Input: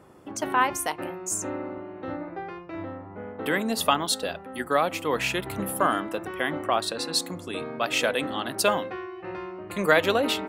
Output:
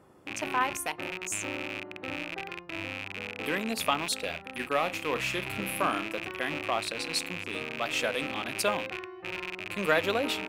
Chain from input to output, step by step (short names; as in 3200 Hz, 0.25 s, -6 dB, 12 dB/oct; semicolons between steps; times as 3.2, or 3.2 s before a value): rattling part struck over -43 dBFS, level -18 dBFS; 4.15–6.14 doubler 37 ms -12 dB; gain -5.5 dB